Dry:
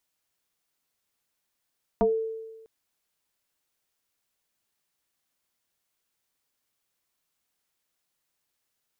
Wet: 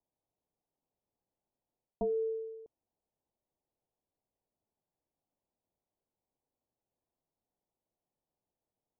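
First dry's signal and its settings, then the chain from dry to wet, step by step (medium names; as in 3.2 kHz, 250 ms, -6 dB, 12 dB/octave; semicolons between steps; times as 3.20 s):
FM tone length 0.65 s, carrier 446 Hz, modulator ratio 0.54, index 2, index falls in 0.19 s exponential, decay 1.23 s, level -17 dB
steep low-pass 880 Hz 36 dB/octave; reverse; compression 6:1, threshold -31 dBFS; reverse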